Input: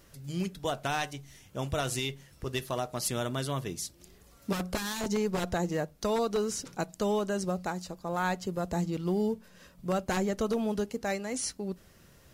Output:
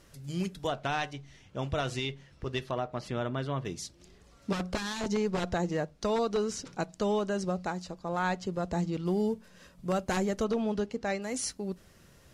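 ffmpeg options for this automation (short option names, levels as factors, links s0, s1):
-af "asetnsamples=n=441:p=0,asendcmd='0.67 lowpass f 4400;2.71 lowpass f 2500;3.65 lowpass f 6300;9.06 lowpass f 11000;10.44 lowpass f 5100;11.22 lowpass f 12000',lowpass=11000"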